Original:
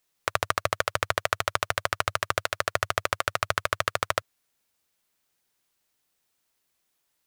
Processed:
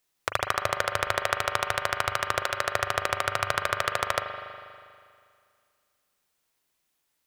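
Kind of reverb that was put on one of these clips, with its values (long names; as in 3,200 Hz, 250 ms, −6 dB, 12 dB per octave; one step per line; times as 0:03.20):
spring reverb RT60 2.2 s, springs 40 ms, chirp 75 ms, DRR 4.5 dB
level −1 dB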